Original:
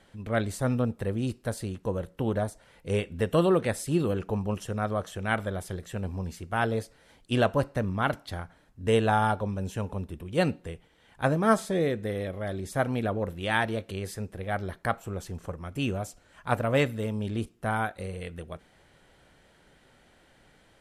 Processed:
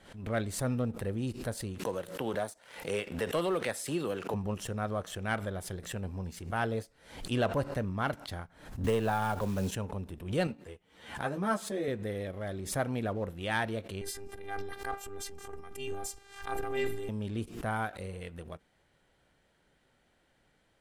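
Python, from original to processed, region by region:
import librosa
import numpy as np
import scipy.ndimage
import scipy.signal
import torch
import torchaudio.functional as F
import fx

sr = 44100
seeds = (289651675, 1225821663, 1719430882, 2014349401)

y = fx.chain(x, sr, fx.highpass(hz=580.0, slope=6),
    fx.leveller(passes=1),
    fx.band_squash(depth_pct=40), at=(1.78, 4.34))
y = fx.chain(y, sr, fx.halfwave_gain(db=-3.0),
    fx.quant_companded(bits=6),
    fx.band_squash(depth_pct=100), at=(8.84, 9.71))
y = fx.chain(y, sr, fx.highpass(hz=110.0, slope=6),
    fx.ensemble(), at=(10.47, 11.88))
y = fx.chain(y, sr, fx.transient(attack_db=-4, sustain_db=12),
    fx.robotise(hz=398.0), at=(14.01, 17.09))
y = fx.leveller(y, sr, passes=1)
y = fx.pre_swell(y, sr, db_per_s=100.0)
y = y * librosa.db_to_amplitude(-8.5)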